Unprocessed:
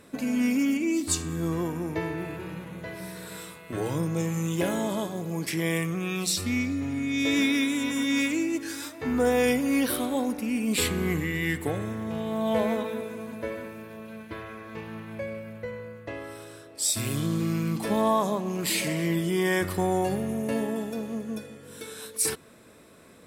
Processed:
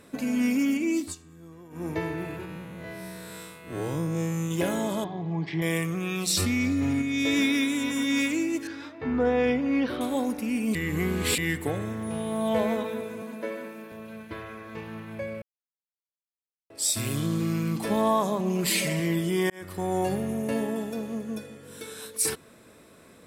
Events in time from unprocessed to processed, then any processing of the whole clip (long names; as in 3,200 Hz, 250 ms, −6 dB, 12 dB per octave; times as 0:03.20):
0:00.98–0:01.87: duck −19 dB, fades 0.17 s
0:02.45–0:04.51: spectrum smeared in time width 98 ms
0:05.04–0:05.62: loudspeaker in its box 100–3,500 Hz, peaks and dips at 160 Hz +6 dB, 220 Hz −9 dB, 530 Hz −10 dB, 780 Hz +7 dB, 1,400 Hz −9 dB, 2,600 Hz −7 dB
0:06.30–0:07.02: envelope flattener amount 100%
0:08.67–0:10.01: high-frequency loss of the air 250 metres
0:10.75–0:11.38: reverse
0:12.02–0:12.47: steady tone 9,700 Hz −46 dBFS
0:13.22–0:13.92: Butterworth high-pass 170 Hz
0:15.42–0:16.70: silence
0:18.39–0:19.00: comb filter 5.1 ms
0:19.50–0:20.04: fade in